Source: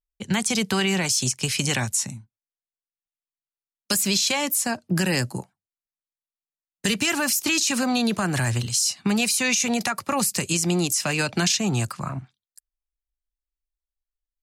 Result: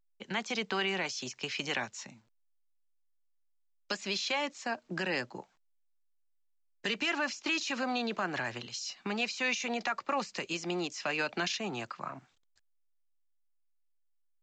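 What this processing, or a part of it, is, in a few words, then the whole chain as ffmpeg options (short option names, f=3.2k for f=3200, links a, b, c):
telephone: -af "highpass=350,lowpass=3.4k,volume=-6dB" -ar 16000 -c:a pcm_alaw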